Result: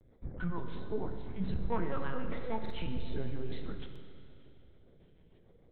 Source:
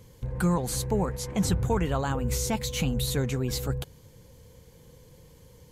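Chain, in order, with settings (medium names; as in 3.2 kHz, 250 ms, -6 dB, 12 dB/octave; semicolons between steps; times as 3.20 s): LFO notch square 1.3 Hz 720–2900 Hz; 1.71–2.57 s: overdrive pedal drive 18 dB, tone 1.7 kHz, clips at -14.5 dBFS; rotary cabinet horn 6.7 Hz; chorus 0.66 Hz, delay 16.5 ms, depth 2.6 ms; LPC vocoder at 8 kHz pitch kept; Schroeder reverb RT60 2.5 s, combs from 32 ms, DRR 6 dB; buffer glitch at 2.61/3.91 s, samples 2048, times 1; trim -5.5 dB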